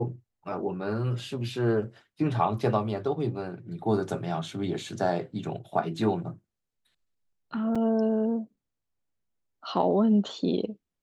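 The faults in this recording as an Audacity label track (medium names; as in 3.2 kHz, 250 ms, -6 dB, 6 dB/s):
7.750000	7.760000	dropout 5.2 ms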